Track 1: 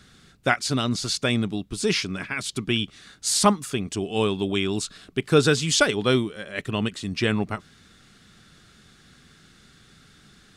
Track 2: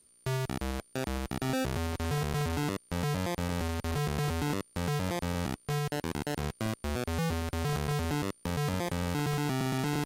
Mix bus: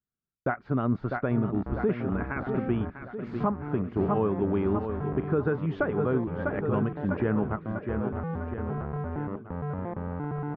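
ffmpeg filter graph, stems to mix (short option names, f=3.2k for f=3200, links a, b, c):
-filter_complex "[0:a]agate=range=-42dB:threshold=-46dB:ratio=16:detection=peak,volume=1.5dB,asplit=2[a][b];[b]volume=-10.5dB[c];[1:a]adelay=1050,volume=-1.5dB,asplit=3[d][e][f];[d]atrim=end=2.9,asetpts=PTS-STARTPTS,afade=t=out:st=2.896:d=0.004:c=hsin[g];[e]atrim=start=2.9:end=3.4,asetpts=PTS-STARTPTS,volume=0[h];[f]atrim=start=3.4,asetpts=PTS-STARTPTS,afade=t=in:d=0.004:c=hsin[i];[g][h][i]concat=n=3:v=0:a=1[j];[c]aecho=0:1:648|1296|1944|2592|3240|3888|4536|5184|5832:1|0.57|0.325|0.185|0.106|0.0602|0.0343|0.0195|0.0111[k];[a][j][k]amix=inputs=3:normalize=0,lowpass=f=1.4k:w=0.5412,lowpass=f=1.4k:w=1.3066,alimiter=limit=-16dB:level=0:latency=1:release=296"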